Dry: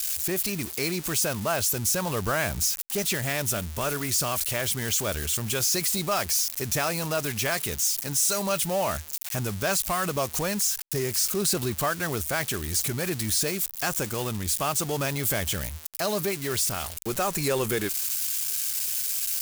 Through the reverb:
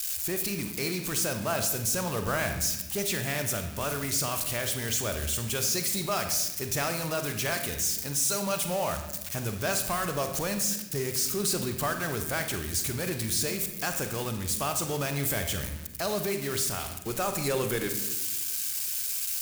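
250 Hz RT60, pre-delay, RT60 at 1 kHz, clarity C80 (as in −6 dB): 1.8 s, 35 ms, 0.85 s, 10.0 dB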